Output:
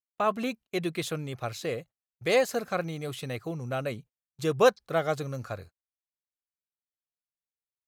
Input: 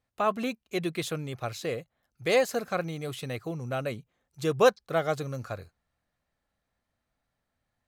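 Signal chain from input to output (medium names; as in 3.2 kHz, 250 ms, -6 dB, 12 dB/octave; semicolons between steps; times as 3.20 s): gate -47 dBFS, range -33 dB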